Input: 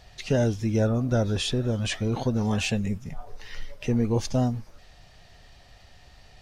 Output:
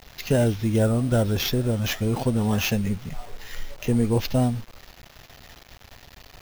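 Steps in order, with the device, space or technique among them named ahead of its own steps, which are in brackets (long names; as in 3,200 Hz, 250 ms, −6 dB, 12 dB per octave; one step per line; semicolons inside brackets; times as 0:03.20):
early 8-bit sampler (sample-rate reduction 9,000 Hz, jitter 0%; bit reduction 8 bits)
level +2.5 dB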